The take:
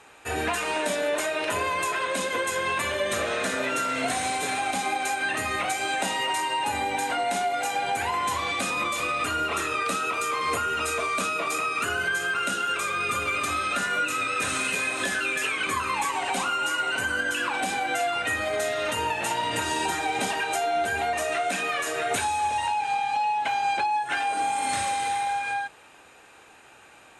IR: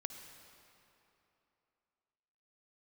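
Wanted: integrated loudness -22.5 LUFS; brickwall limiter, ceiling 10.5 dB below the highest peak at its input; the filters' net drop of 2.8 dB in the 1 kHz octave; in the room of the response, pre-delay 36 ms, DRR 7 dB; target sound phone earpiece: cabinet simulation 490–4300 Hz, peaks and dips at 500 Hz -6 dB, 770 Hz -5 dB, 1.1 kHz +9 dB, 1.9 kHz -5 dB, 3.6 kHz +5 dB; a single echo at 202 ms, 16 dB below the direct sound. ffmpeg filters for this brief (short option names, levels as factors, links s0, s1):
-filter_complex "[0:a]equalizer=f=1000:t=o:g=-5,alimiter=level_in=1.19:limit=0.0631:level=0:latency=1,volume=0.841,aecho=1:1:202:0.158,asplit=2[s0][s1];[1:a]atrim=start_sample=2205,adelay=36[s2];[s1][s2]afir=irnorm=-1:irlink=0,volume=0.562[s3];[s0][s3]amix=inputs=2:normalize=0,highpass=490,equalizer=f=500:t=q:w=4:g=-6,equalizer=f=770:t=q:w=4:g=-5,equalizer=f=1100:t=q:w=4:g=9,equalizer=f=1900:t=q:w=4:g=-5,equalizer=f=3600:t=q:w=4:g=5,lowpass=f=4300:w=0.5412,lowpass=f=4300:w=1.3066,volume=2.99"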